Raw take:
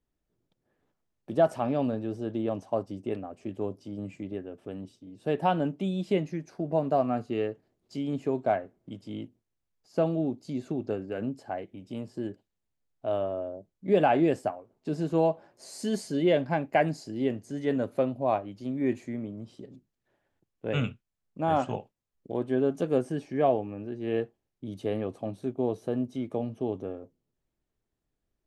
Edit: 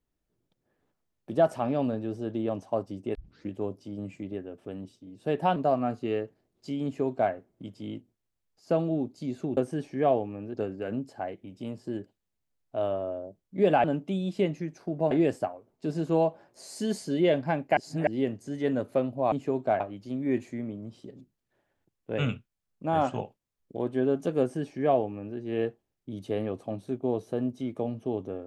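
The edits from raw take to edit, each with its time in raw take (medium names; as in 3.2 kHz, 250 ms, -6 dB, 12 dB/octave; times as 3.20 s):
3.15 s: tape start 0.35 s
5.56–6.83 s: move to 14.14 s
8.11–8.59 s: copy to 18.35 s
16.80–17.10 s: reverse
22.95–23.92 s: copy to 10.84 s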